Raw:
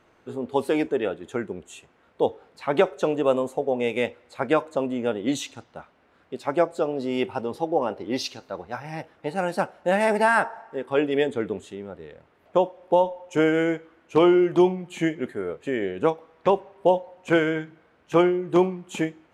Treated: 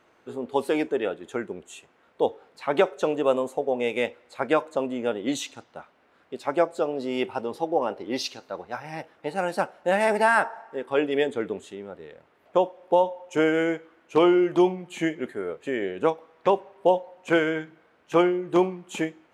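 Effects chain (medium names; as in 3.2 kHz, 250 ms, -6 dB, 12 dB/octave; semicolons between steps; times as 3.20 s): bass shelf 140 Hz -11.5 dB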